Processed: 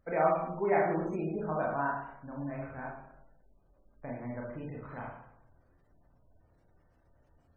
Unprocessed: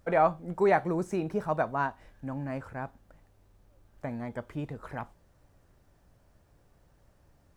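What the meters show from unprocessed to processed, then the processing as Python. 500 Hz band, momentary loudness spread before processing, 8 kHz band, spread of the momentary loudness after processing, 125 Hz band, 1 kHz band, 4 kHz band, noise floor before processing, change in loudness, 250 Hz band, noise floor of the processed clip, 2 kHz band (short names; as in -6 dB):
-2.5 dB, 16 LU, n/a, 16 LU, -3.5 dB, -3.0 dB, under -15 dB, -65 dBFS, -2.5 dB, -3.0 dB, -68 dBFS, -2.5 dB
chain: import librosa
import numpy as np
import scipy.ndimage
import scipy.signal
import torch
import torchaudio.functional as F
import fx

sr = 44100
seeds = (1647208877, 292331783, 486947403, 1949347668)

y = fx.rev_schroeder(x, sr, rt60_s=0.78, comb_ms=25, drr_db=-4.0)
y = fx.spec_gate(y, sr, threshold_db=-30, keep='strong')
y = F.gain(torch.from_numpy(y), -8.0).numpy()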